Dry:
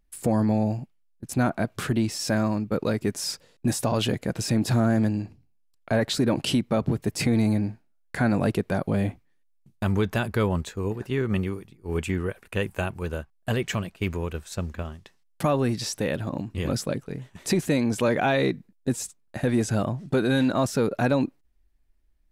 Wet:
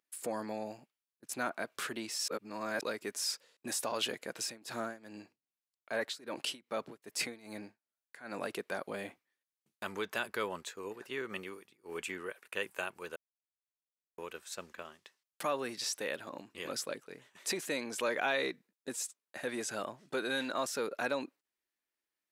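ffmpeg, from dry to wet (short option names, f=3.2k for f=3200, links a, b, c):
-filter_complex "[0:a]asplit=3[a][b][c];[a]afade=t=out:st=4.44:d=0.02[d];[b]tremolo=f=2.5:d=0.89,afade=t=in:st=4.44:d=0.02,afade=t=out:st=8.49:d=0.02[e];[c]afade=t=in:st=8.49:d=0.02[f];[d][e][f]amix=inputs=3:normalize=0,asplit=5[g][h][i][j][k];[g]atrim=end=2.282[l];[h]atrim=start=2.278:end=2.812,asetpts=PTS-STARTPTS,areverse[m];[i]atrim=start=2.808:end=13.16,asetpts=PTS-STARTPTS,afade=t=out:st=10.348:d=0.004:c=hsin[n];[j]atrim=start=13.16:end=14.18,asetpts=PTS-STARTPTS,volume=0[o];[k]atrim=start=14.18,asetpts=PTS-STARTPTS,afade=t=in:d=0.004:c=hsin[p];[l][m]acrossfade=d=0.004:c1=hsin:c2=hsin[q];[n][o][p]concat=n=3:v=0:a=1[r];[q][r]acrossfade=d=0.004:c1=hsin:c2=hsin,highpass=560,equalizer=f=740:w=2:g=-5.5,volume=-4.5dB"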